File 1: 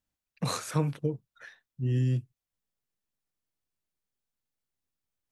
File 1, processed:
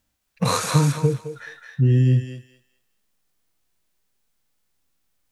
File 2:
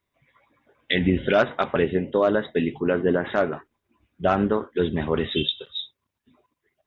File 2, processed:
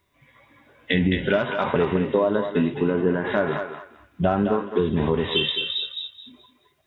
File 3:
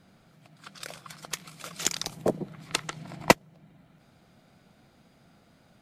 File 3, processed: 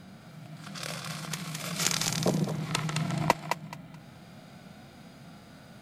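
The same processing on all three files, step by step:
dynamic EQ 980 Hz, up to +7 dB, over -44 dBFS, Q 4.4; harmonic-percussive split percussive -16 dB; compressor 6:1, threshold -32 dBFS; on a send: thinning echo 0.214 s, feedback 26%, high-pass 770 Hz, level -4 dB; on the sum: normalise peaks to -6 dBFS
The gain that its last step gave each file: +17.5, +14.0, +13.0 dB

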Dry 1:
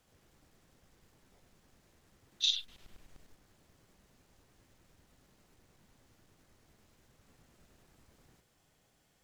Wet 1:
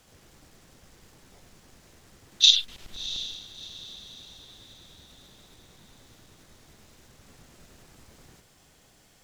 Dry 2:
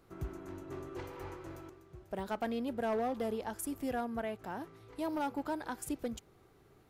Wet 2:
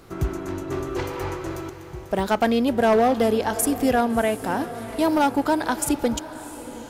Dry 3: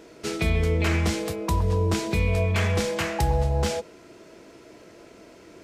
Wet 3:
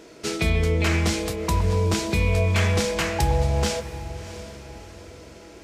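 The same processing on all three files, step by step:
bell 5800 Hz +3.5 dB 2 oct; diffused feedback echo 0.683 s, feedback 43%, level -14 dB; match loudness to -23 LUFS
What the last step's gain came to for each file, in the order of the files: +10.5, +15.5, +1.0 dB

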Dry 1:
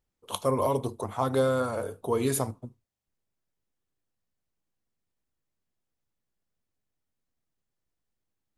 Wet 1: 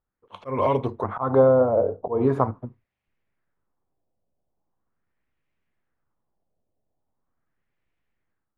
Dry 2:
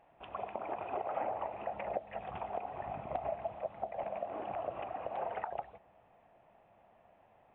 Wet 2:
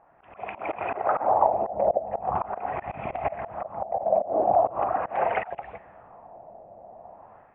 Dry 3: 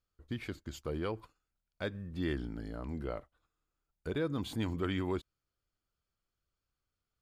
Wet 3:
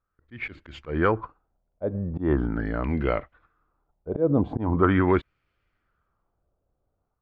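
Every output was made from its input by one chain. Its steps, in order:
AGC gain up to 9.5 dB; auto swell 0.147 s; LFO low-pass sine 0.41 Hz 630–2400 Hz; normalise peaks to -6 dBFS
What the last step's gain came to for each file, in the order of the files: -3.5, +3.0, +3.5 dB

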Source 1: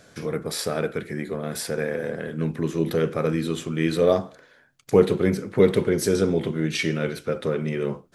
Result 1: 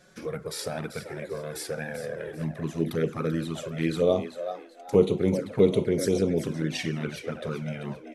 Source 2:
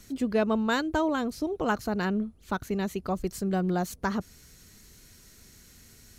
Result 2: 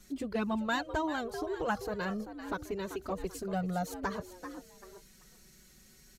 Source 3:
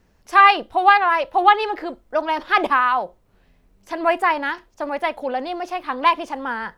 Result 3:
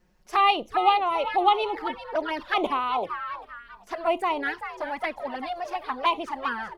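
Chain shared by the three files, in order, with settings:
frequency-shifting echo 0.389 s, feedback 32%, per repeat +88 Hz, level -11 dB; envelope flanger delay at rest 5.7 ms, full sweep at -16 dBFS; gain -2.5 dB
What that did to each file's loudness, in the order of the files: -4.0, -6.5, -7.5 LU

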